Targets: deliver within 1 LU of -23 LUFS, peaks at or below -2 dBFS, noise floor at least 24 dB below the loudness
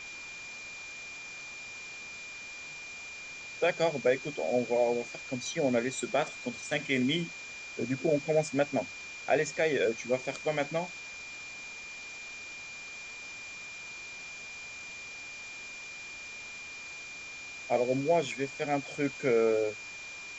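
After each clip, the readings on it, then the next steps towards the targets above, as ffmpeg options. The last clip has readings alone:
steady tone 2400 Hz; tone level -42 dBFS; noise floor -44 dBFS; noise floor target -57 dBFS; loudness -33.0 LUFS; peak -14.0 dBFS; loudness target -23.0 LUFS
-> -af "bandreject=f=2.4k:w=30"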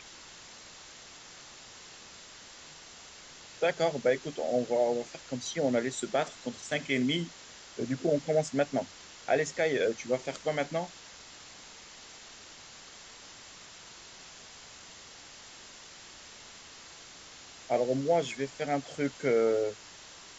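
steady tone none; noise floor -51 dBFS; noise floor target -55 dBFS
-> -af "afftdn=nr=6:nf=-51"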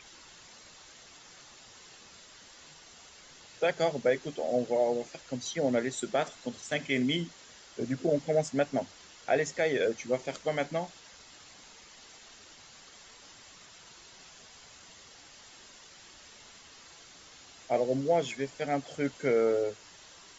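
noise floor -54 dBFS; noise floor target -55 dBFS
-> -af "afftdn=nr=6:nf=-54"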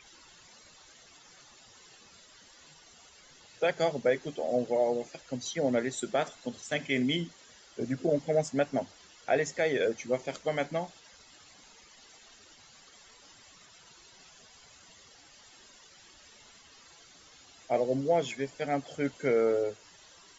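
noise floor -57 dBFS; loudness -31.0 LUFS; peak -14.0 dBFS; loudness target -23.0 LUFS
-> -af "volume=8dB"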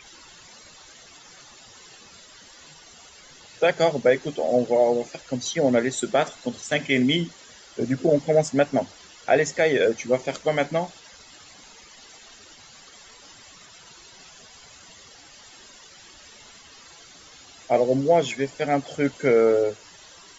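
loudness -23.0 LUFS; peak -6.0 dBFS; noise floor -49 dBFS

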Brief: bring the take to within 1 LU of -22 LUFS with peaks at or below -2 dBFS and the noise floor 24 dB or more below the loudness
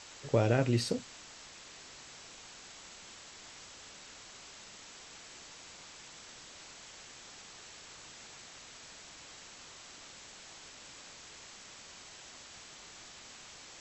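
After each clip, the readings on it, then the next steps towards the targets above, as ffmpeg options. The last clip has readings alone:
noise floor -52 dBFS; noise floor target -65 dBFS; loudness -41.0 LUFS; peak -14.0 dBFS; loudness target -22.0 LUFS
-> -af "afftdn=nr=13:nf=-52"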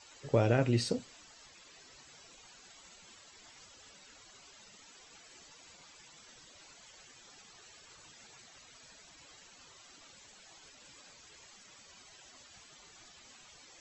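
noise floor -58 dBFS; loudness -30.5 LUFS; peak -14.0 dBFS; loudness target -22.0 LUFS
-> -af "volume=8.5dB"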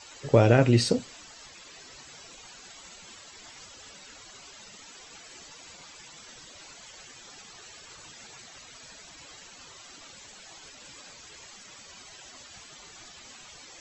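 loudness -22.0 LUFS; peak -5.5 dBFS; noise floor -49 dBFS

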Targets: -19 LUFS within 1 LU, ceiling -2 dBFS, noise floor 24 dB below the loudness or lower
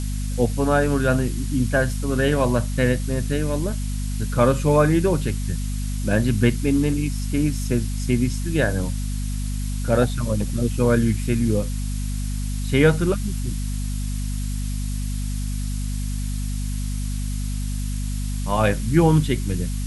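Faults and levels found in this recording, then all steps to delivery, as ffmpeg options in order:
hum 50 Hz; harmonics up to 250 Hz; hum level -23 dBFS; noise floor -26 dBFS; noise floor target -47 dBFS; loudness -23.0 LUFS; peak -3.5 dBFS; loudness target -19.0 LUFS
-> -af "bandreject=f=50:t=h:w=6,bandreject=f=100:t=h:w=6,bandreject=f=150:t=h:w=6,bandreject=f=200:t=h:w=6,bandreject=f=250:t=h:w=6"
-af "afftdn=nr=21:nf=-26"
-af "volume=4dB,alimiter=limit=-2dB:level=0:latency=1"

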